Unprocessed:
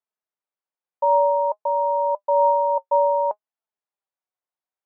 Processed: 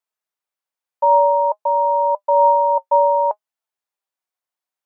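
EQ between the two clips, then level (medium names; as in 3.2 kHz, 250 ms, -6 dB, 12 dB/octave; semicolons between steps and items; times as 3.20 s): dynamic bell 760 Hz, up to +3 dB, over -30 dBFS, Q 1.7; bass shelf 490 Hz -8.5 dB; +5.0 dB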